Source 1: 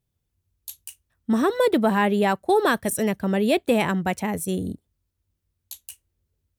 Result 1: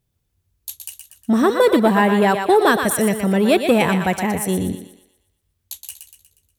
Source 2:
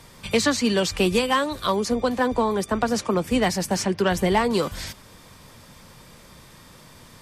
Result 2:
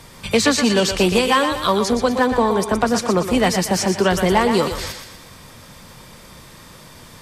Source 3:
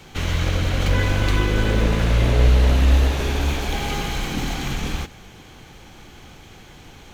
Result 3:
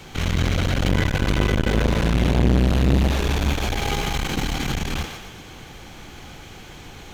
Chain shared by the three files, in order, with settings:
on a send: thinning echo 0.12 s, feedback 47%, high-pass 420 Hz, level -7 dB; on the sum: core saturation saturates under 380 Hz; normalise peaks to -3 dBFS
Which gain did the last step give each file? +5.5, +5.0, +3.0 dB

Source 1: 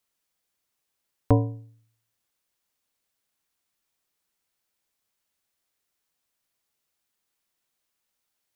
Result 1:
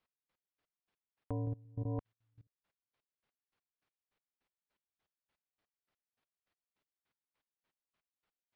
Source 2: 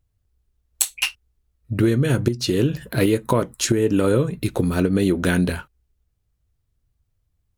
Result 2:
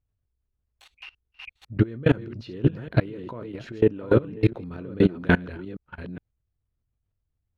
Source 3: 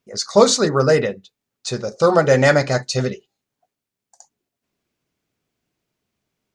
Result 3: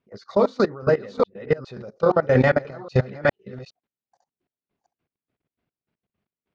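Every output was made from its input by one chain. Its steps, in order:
reverse delay 0.412 s, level -5.5 dB; low shelf 61 Hz -3 dB; chopper 3.4 Hz, depth 60%, duty 20%; level quantiser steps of 21 dB; air absorption 320 m; gain +6.5 dB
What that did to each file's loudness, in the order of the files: -15.0, -3.0, -5.0 LU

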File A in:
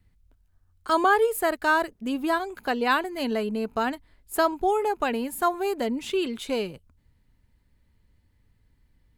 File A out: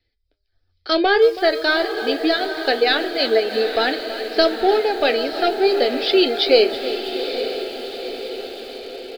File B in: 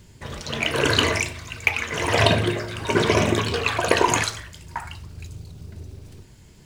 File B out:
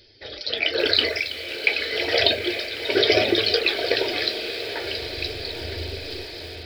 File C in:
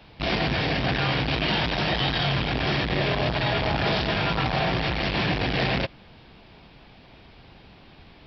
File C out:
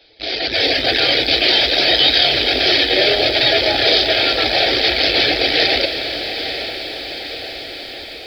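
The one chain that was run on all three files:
reverb removal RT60 0.63 s; tone controls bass -14 dB, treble +12 dB; notch 2800 Hz, Q 9.3; de-hum 201.6 Hz, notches 11; AGC gain up to 15 dB; soft clip -5.5 dBFS; fixed phaser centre 430 Hz, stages 4; flange 0.29 Hz, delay 8.7 ms, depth 5.8 ms, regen +66%; on a send: diffused feedback echo 0.875 s, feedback 60%, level -9.5 dB; on the sum: downsampling 11025 Hz; lo-fi delay 0.326 s, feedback 55%, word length 7-bit, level -14 dB; normalise peaks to -2 dBFS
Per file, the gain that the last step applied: +8.0, +8.0, +7.0 dB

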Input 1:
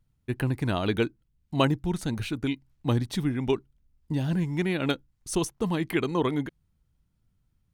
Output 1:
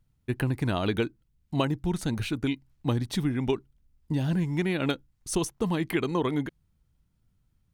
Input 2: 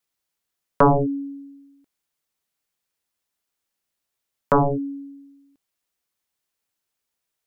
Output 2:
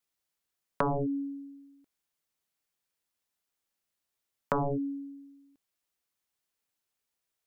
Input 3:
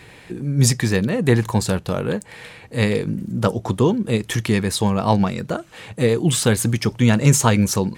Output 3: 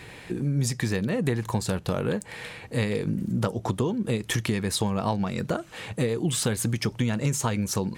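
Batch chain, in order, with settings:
compressor 12:1, threshold -22 dBFS; normalise peaks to -12 dBFS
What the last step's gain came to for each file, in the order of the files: +1.0, -4.0, 0.0 dB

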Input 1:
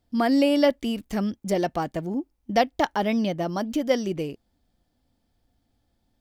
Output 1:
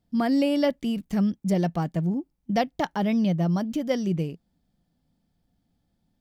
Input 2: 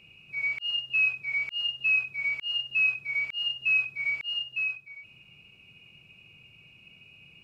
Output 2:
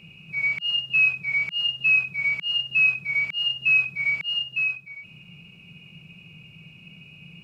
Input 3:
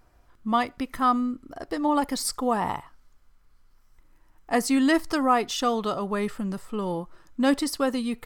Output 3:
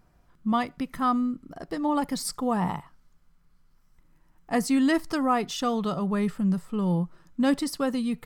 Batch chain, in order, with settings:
bell 170 Hz +14.5 dB 0.59 oct; normalise peaks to -12 dBFS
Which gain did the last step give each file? -4.5, +5.0, -3.5 dB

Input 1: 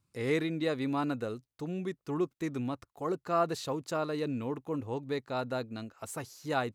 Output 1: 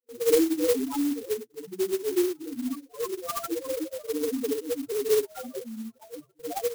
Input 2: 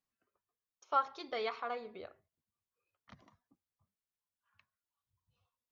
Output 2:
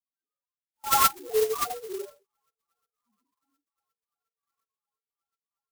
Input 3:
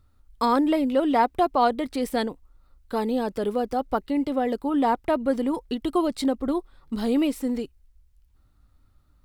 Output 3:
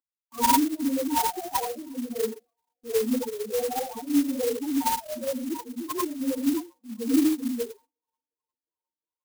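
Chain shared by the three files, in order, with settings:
phase scrambler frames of 0.2 s; LPF 5900 Hz 24 dB/oct; bell 870 Hz +2 dB 1.2 oct; loudest bins only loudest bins 2; HPF 180 Hz 24 dB/oct; thin delay 0.357 s, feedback 83%, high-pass 4100 Hz, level -10.5 dB; gate with hold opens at -53 dBFS; flange 0.28 Hz, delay 3.6 ms, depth 1.6 ms, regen +4%; low shelf 420 Hz -5 dB; fixed phaser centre 640 Hz, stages 6; clock jitter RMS 0.095 ms; normalise peaks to -12 dBFS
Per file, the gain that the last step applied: +17.5, +22.0, +10.0 dB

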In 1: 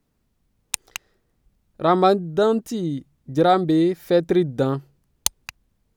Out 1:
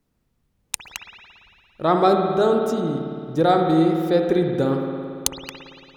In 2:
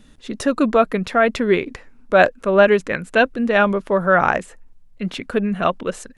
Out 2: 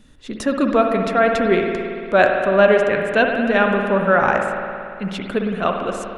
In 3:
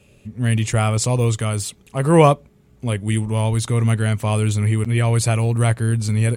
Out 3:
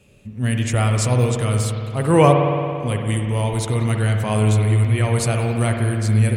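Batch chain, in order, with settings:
spring tank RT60 2.4 s, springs 56 ms, chirp 50 ms, DRR 2.5 dB; gain -1.5 dB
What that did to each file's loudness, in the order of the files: +0.5, 0.0, 0.0 LU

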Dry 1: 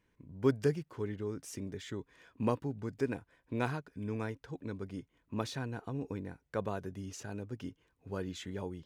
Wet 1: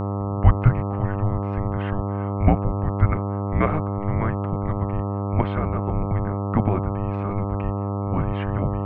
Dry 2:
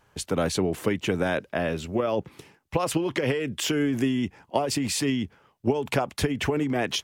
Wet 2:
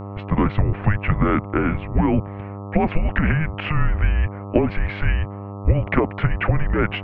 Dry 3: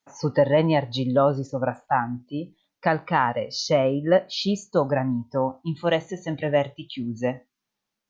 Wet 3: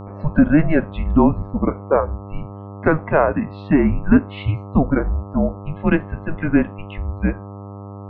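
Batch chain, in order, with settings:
mistuned SSB -310 Hz 190–2700 Hz; buzz 100 Hz, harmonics 13, -40 dBFS -5 dB/oct; normalise peaks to -1.5 dBFS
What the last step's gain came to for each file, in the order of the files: +14.5, +7.5, +6.0 dB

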